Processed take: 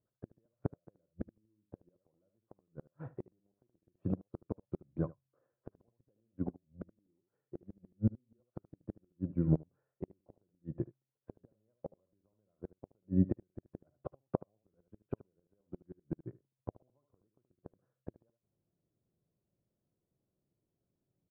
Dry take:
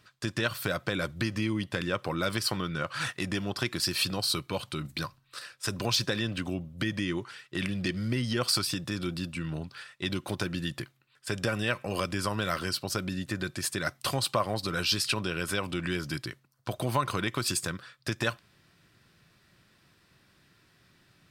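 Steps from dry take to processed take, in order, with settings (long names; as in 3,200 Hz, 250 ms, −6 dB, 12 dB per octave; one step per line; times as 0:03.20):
transistor ladder low-pass 710 Hz, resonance 30%
gate with flip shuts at −30 dBFS, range −28 dB
single-tap delay 75 ms −8 dB
expander for the loud parts 2.5 to 1, over −55 dBFS
level +14.5 dB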